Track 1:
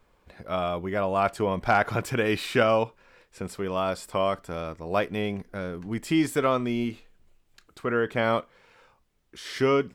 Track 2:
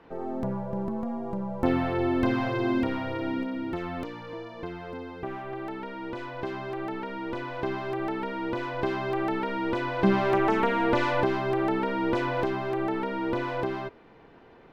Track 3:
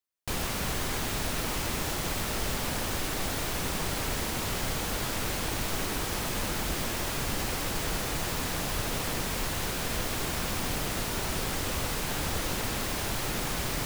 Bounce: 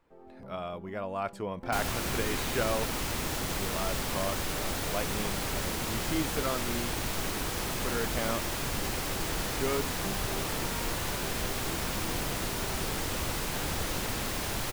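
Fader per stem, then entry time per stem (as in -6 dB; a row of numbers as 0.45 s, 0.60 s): -9.5 dB, -18.5 dB, -1.5 dB; 0.00 s, 0.00 s, 1.45 s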